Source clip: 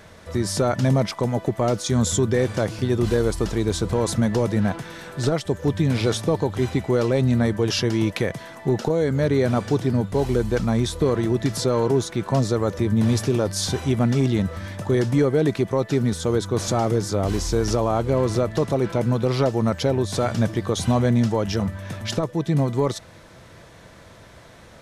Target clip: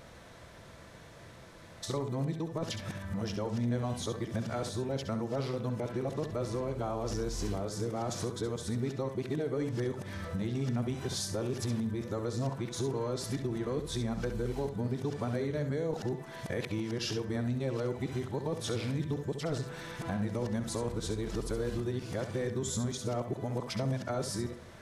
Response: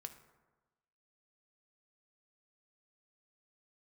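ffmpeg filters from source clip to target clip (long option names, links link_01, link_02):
-filter_complex "[0:a]areverse,acompressor=threshold=-27dB:ratio=3,asplit=2[link_01][link_02];[1:a]atrim=start_sample=2205,adelay=67[link_03];[link_02][link_03]afir=irnorm=-1:irlink=0,volume=-3.5dB[link_04];[link_01][link_04]amix=inputs=2:normalize=0,volume=-6dB"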